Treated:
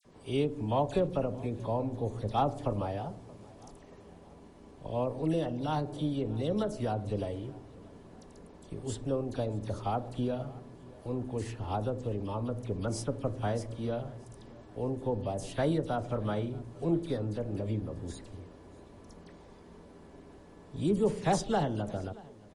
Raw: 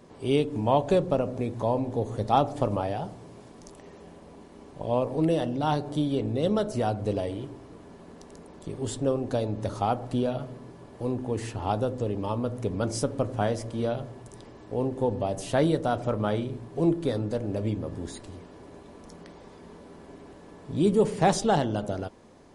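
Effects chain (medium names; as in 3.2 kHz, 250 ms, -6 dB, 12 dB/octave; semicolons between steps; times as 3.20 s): bass shelf 96 Hz +7.5 dB; phase dispersion lows, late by 51 ms, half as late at 2.2 kHz; on a send: feedback delay 628 ms, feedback 46%, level -22.5 dB; on the sum: trim -6.5 dB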